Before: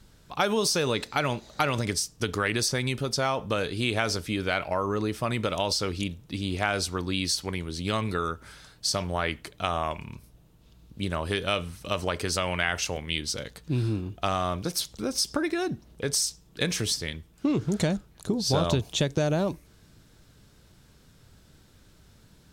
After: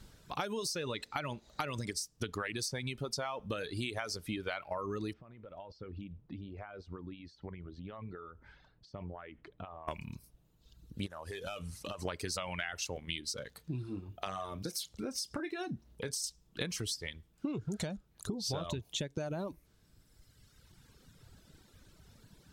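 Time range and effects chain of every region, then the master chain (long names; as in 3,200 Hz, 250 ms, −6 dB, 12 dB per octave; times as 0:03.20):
0:05.13–0:09.88: downward compressor 12 to 1, threshold −36 dBFS + head-to-tape spacing loss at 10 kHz 44 dB
0:11.06–0:12.05: variable-slope delta modulation 64 kbit/s + downward compressor 12 to 1, threshold −34 dBFS
0:13.51–0:16.24: high-pass filter 58 Hz + downward compressor 1.5 to 1, threshold −38 dBFS + double-tracking delay 31 ms −11 dB
whole clip: reverb reduction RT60 1.9 s; downward compressor 5 to 1, threshold −35 dBFS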